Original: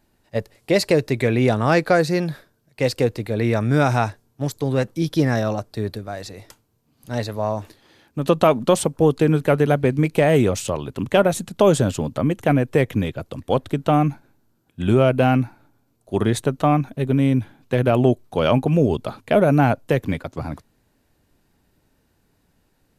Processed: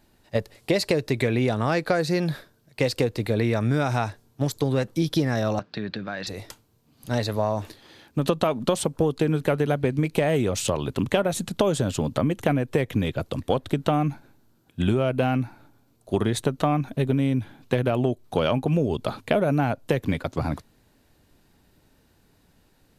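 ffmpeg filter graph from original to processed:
-filter_complex "[0:a]asettb=1/sr,asplit=3[s0][s1][s2];[s0]atrim=end=5.594[s3];[s1]atrim=start=5.59:end=6.27,asetpts=PTS-STARTPTS,afade=t=in:d=0.004:c=qsin,afade=t=out:st=0.676:d=0.004:c=qsin,highpass=170,equalizer=f=180:t=q:w=4:g=8,equalizer=f=420:t=q:w=4:g=-5,equalizer=f=670:t=q:w=4:g=-5,equalizer=f=1600:t=q:w=4:g=8,equalizer=f=2600:t=q:w=4:g=5,lowpass=f=4600:w=0.5412,lowpass=f=4600:w=1.3066,acompressor=threshold=0.0316:ratio=3:attack=3.2:release=140:knee=1:detection=peak[s4];[s2]atrim=start=6.266[s5];[s3][s4]acrossfade=d=0.004:c1=hsin:c2=qsin[s6];[s6][s5]acrossfade=d=0.004:c1=qsin:c2=hsin,equalizer=f=3800:t=o:w=0.77:g=3,acompressor=threshold=0.0794:ratio=6,volume=1.41"

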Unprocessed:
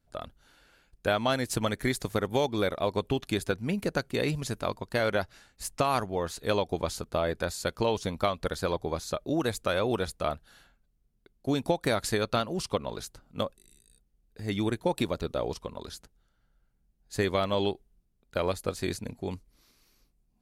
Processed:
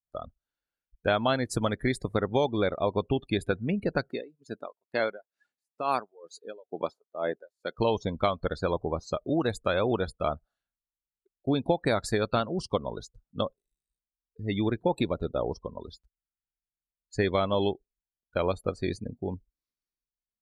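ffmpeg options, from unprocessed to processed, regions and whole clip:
-filter_complex "[0:a]asettb=1/sr,asplit=3[s0][s1][s2];[s0]atrim=end=4.104[s3];[s1]atrim=start=4.1:end=7.78,asetpts=PTS-STARTPTS,afade=t=in:d=0.004:c=qsin,afade=t=out:st=3.676:d=0.004:c=qsin,highpass=230,acompressor=mode=upward:threshold=0.01:ratio=2.5:attack=3.2:release=140:knee=2.83:detection=peak,aeval=exprs='val(0)*pow(10,-21*(0.5-0.5*cos(2*PI*2.2*n/s))/20)':c=same[s4];[s2]atrim=start=7.776[s5];[s3][s4]acrossfade=d=0.004:c1=hsin:c2=qsin[s6];[s6][s5]acrossfade=d=0.004:c1=qsin:c2=hsin,afftdn=nr=34:nf=-38,adynamicequalizer=threshold=0.00708:dfrequency=2000:dqfactor=0.7:tfrequency=2000:tqfactor=0.7:attack=5:release=100:ratio=0.375:range=2:mode=cutabove:tftype=highshelf,volume=1.19"

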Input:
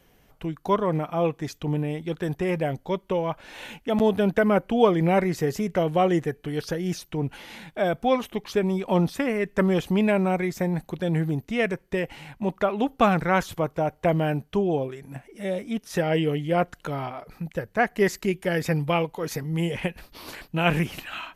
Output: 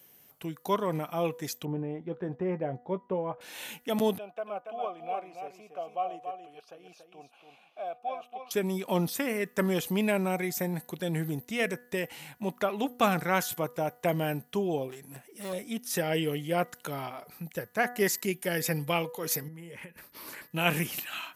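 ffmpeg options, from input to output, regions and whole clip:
-filter_complex "[0:a]asettb=1/sr,asplit=3[s0][s1][s2];[s0]atrim=end=1.654[s3];[s1]atrim=start=1.65:end=3.41,asetpts=PTS-STARTPTS,afade=t=in:d=0.004:c=qsin,afade=t=out:st=1.756:d=0.004:c=qsin,lowpass=1100,asplit=2[s4][s5];[s5]adelay=16,volume=0.282[s6];[s4][s6]amix=inputs=2:normalize=0,atrim=end_sample=77616[s7];[s2]atrim=start=3.406[s8];[s3][s7]acrossfade=d=0.004:c1=hsin:c2=qsin[s9];[s9][s8]acrossfade=d=0.004:c1=qsin:c2=hsin,asettb=1/sr,asplit=3[s10][s11][s12];[s10]atrim=end=4.184[s13];[s11]atrim=start=4.18:end=8.51,asetpts=PTS-STARTPTS,afade=t=in:d=0.004:c=qsin,afade=t=out:st=4.326:d=0.004:c=qsin,asplit=3[s14][s15][s16];[s14]bandpass=f=730:t=q:w=8,volume=1[s17];[s15]bandpass=f=1090:t=q:w=8,volume=0.501[s18];[s16]bandpass=f=2440:t=q:w=8,volume=0.355[s19];[s17][s18][s19]amix=inputs=3:normalize=0,aecho=1:1:283:0.447,atrim=end_sample=190953[s20];[s12]atrim=start=8.506[s21];[s13][s20]acrossfade=d=0.004:c1=hsin:c2=qsin[s22];[s22][s21]acrossfade=d=0.004:c1=qsin:c2=hsin,asettb=1/sr,asplit=3[s23][s24][s25];[s23]atrim=end=14.904[s26];[s24]atrim=start=14.9:end=15.53,asetpts=PTS-STARTPTS,afade=t=in:d=0.004:c=qsin,afade=t=out:st=0.626:d=0.004:c=qsin,aeval=exprs='clip(val(0),-1,0.0141)':c=same,bandreject=f=2200:w=16[s27];[s25]atrim=start=15.526[s28];[s26][s27]acrossfade=d=0.004:c1=hsin:c2=qsin[s29];[s29][s28]acrossfade=d=0.004:c1=qsin:c2=hsin,asettb=1/sr,asplit=3[s30][s31][s32];[s30]atrim=end=19.484[s33];[s31]atrim=start=19.48:end=20.51,asetpts=PTS-STARTPTS,afade=t=in:d=0.004:c=qsin,afade=t=out:st=1.026:d=0.004:c=qsin,acompressor=threshold=0.0178:ratio=12:attack=3.2:release=140:knee=1:detection=peak,asuperstop=centerf=730:order=4:qfactor=6.1,highshelf=f=2500:t=q:w=1.5:g=-6.5[s34];[s32]atrim=start=20.506[s35];[s33][s34]acrossfade=d=0.004:c1=hsin:c2=qsin[s36];[s36][s35]acrossfade=d=0.004:c1=qsin:c2=hsin,highpass=130,aemphasis=mode=production:type=75fm,bandreject=f=244.5:t=h:w=4,bandreject=f=489:t=h:w=4,bandreject=f=733.5:t=h:w=4,bandreject=f=978:t=h:w=4,bandreject=f=1222.5:t=h:w=4,bandreject=f=1467:t=h:w=4,bandreject=f=1711.5:t=h:w=4,bandreject=f=1956:t=h:w=4,volume=0.562"

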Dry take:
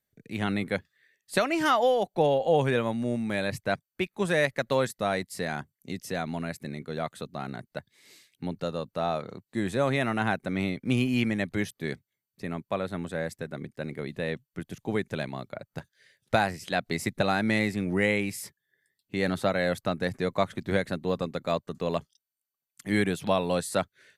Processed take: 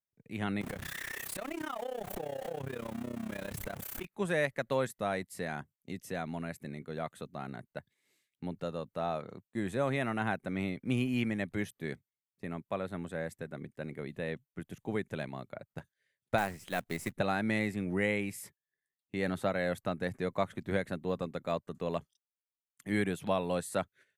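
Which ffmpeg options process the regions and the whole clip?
-filter_complex "[0:a]asettb=1/sr,asplit=3[s0][s1][s2];[s0]atrim=end=0.614[s3];[s1]atrim=start=0.61:end=4.05,asetpts=PTS-STARTPTS,afade=t=in:d=0.004:c=qsin,afade=t=out:st=3.436:d=0.004:c=qsin,aeval=exprs='val(0)+0.5*0.0596*sgn(val(0))':c=same,acompressor=threshold=0.0398:ratio=4:attack=3.2:release=140:knee=1:detection=peak,tremolo=f=32:d=0.919[s4];[s2]atrim=start=4.046[s5];[s3][s4]acrossfade=d=0.004:c1=hsin:c2=qsin[s6];[s6][s5]acrossfade=d=0.004:c1=qsin:c2=hsin,asettb=1/sr,asplit=3[s7][s8][s9];[s7]atrim=end=16.384[s10];[s8]atrim=start=16.38:end=17.12,asetpts=PTS-STARTPTS,afade=t=in:d=0.004:c=qsin,afade=t=out:st=0.736:d=0.004:c=qsin,aeval=exprs='if(lt(val(0),0),0.708*val(0),val(0))':c=same,acrusher=bits=3:mode=log:mix=0:aa=0.000001[s11];[s9]atrim=start=17.116[s12];[s10][s11]acrossfade=d=0.004:c1=hsin:c2=qsin[s13];[s13][s12]acrossfade=d=0.004:c1=qsin:c2=hsin,agate=range=0.251:threshold=0.00282:ratio=16:detection=peak,equalizer=f=4800:t=o:w=0.8:g=-7,volume=0.531"

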